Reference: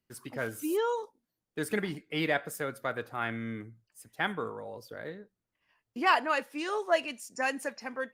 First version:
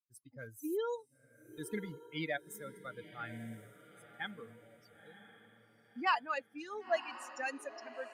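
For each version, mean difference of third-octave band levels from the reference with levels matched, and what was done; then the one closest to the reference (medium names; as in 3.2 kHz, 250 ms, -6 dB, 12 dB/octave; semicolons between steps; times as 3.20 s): 8.5 dB: expander on every frequency bin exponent 2; echo that smears into a reverb 1003 ms, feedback 41%, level -13.5 dB; trim -4.5 dB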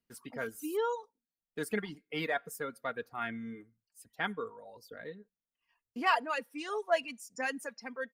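4.5 dB: comb 4.3 ms, depth 40%; reverb removal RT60 1.2 s; trim -4 dB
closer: second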